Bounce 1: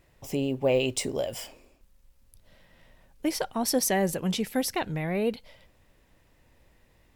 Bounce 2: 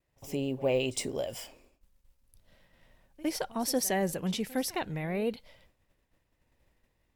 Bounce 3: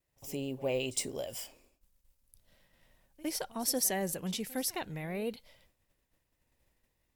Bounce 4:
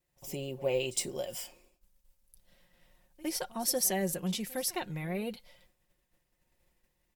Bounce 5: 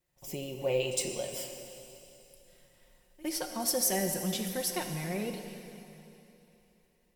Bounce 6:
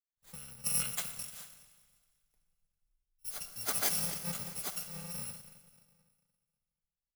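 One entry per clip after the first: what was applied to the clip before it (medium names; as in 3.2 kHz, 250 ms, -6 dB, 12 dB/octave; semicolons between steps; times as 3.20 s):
expander -54 dBFS; reverse echo 60 ms -20 dB; trim -4 dB
treble shelf 5.1 kHz +9.5 dB; trim -5 dB
comb 5.6 ms, depth 55%
plate-style reverb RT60 3.1 s, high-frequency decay 1×, pre-delay 0 ms, DRR 5 dB
bit-reversed sample order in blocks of 128 samples; three bands expanded up and down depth 70%; trim -6.5 dB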